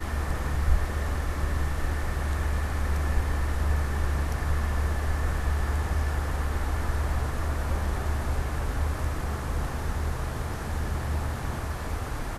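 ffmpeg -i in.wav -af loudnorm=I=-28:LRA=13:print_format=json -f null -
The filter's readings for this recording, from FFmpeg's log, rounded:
"input_i" : "-30.2",
"input_tp" : "-9.8",
"input_lra" : "3.3",
"input_thresh" : "-40.2",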